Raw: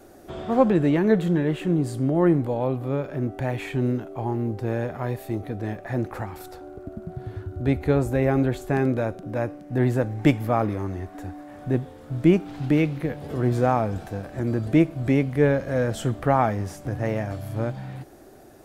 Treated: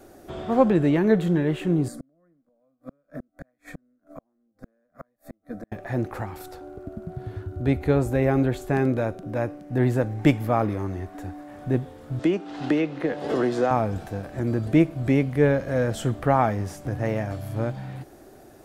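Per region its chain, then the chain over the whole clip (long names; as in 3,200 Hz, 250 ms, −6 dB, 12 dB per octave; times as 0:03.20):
0:01.88–0:05.72: gate with flip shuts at −18 dBFS, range −40 dB + phaser with its sweep stopped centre 580 Hz, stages 8
0:12.19–0:13.71: three-way crossover with the lows and the highs turned down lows −20 dB, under 230 Hz, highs −19 dB, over 7,800 Hz + notch filter 2,300 Hz + multiband upward and downward compressor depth 100%
whole clip: no processing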